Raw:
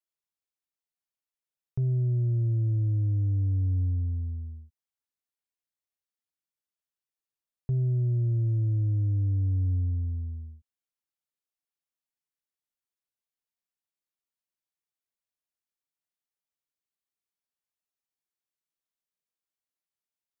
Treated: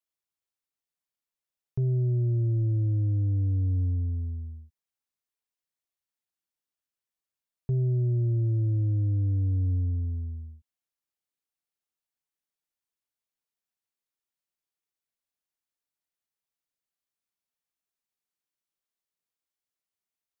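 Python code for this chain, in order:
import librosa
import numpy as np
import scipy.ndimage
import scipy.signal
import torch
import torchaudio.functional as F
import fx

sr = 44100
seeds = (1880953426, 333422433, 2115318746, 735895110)

y = fx.dynamic_eq(x, sr, hz=420.0, q=1.2, threshold_db=-49.0, ratio=4.0, max_db=6)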